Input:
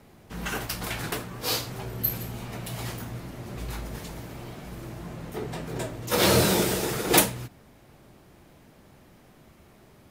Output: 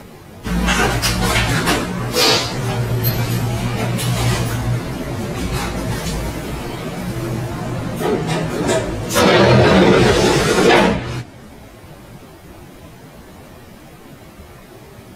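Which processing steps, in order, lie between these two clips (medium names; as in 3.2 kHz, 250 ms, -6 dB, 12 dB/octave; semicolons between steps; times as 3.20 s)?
low-pass that closes with the level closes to 2.7 kHz, closed at -18.5 dBFS; plain phase-vocoder stretch 1.5×; loudness maximiser +19.5 dB; trim -1 dB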